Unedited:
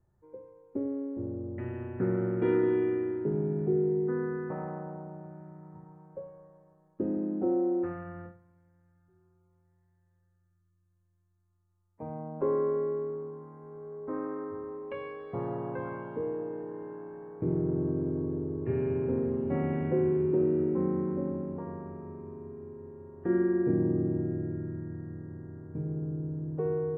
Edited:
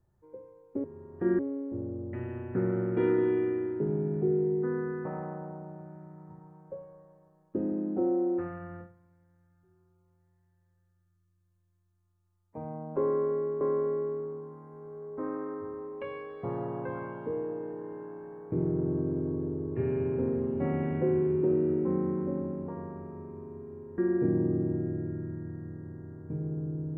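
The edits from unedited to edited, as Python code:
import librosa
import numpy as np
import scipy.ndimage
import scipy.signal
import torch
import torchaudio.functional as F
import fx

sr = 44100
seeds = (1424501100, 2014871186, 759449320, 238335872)

y = fx.edit(x, sr, fx.repeat(start_s=12.51, length_s=0.55, count=2),
    fx.move(start_s=22.88, length_s=0.55, to_s=0.84), tone=tone)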